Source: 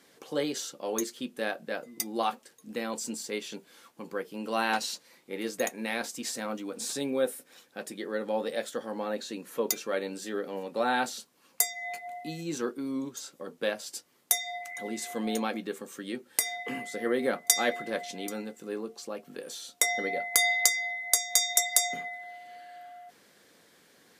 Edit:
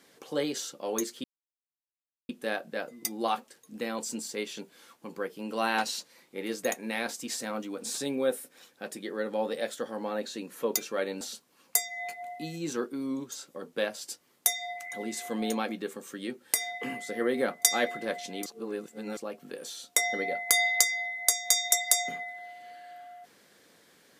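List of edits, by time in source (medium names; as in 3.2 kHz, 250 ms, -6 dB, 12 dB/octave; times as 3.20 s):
1.24 s: insert silence 1.05 s
10.16–11.06 s: delete
18.31–19.02 s: reverse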